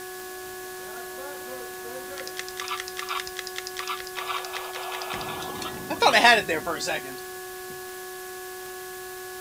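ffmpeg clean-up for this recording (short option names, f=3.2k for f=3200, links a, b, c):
-af "adeclick=t=4,bandreject=f=369.2:t=h:w=4,bandreject=f=738.4:t=h:w=4,bandreject=f=1.1076k:t=h:w=4,bandreject=f=1.4768k:t=h:w=4,bandreject=f=1.7k:w=30,afwtdn=0.0079"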